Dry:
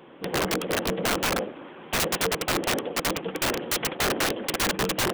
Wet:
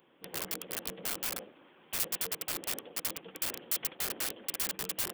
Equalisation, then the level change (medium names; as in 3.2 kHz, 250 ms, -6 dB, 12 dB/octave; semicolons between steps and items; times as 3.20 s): pre-emphasis filter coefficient 0.8; peaking EQ 6.2 kHz -3 dB 0.31 oct; band-stop 3.9 kHz, Q 21; -4.5 dB